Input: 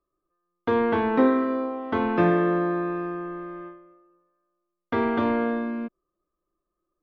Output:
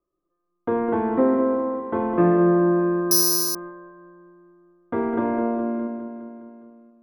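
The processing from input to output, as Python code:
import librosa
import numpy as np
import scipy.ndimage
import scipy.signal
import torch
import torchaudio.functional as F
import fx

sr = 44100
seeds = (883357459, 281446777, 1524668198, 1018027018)

y = scipy.signal.sosfilt(scipy.signal.butter(2, 1400.0, 'lowpass', fs=sr, output='sos'), x)
y = fx.peak_eq(y, sr, hz=340.0, db=4.5, octaves=2.5)
y = fx.echo_feedback(y, sr, ms=206, feedback_pct=60, wet_db=-9)
y = fx.room_shoebox(y, sr, seeds[0], volume_m3=2300.0, walls='furnished', distance_m=0.88)
y = fx.resample_bad(y, sr, factor=8, down='none', up='zero_stuff', at=(3.11, 3.55))
y = y * 10.0 ** (-3.0 / 20.0)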